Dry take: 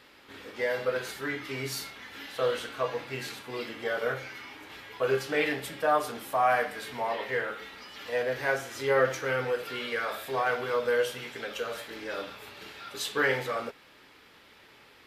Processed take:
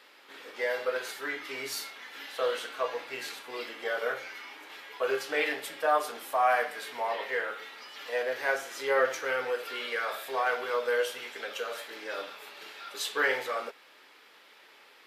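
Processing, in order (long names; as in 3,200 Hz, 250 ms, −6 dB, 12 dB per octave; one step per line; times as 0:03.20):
high-pass filter 430 Hz 12 dB per octave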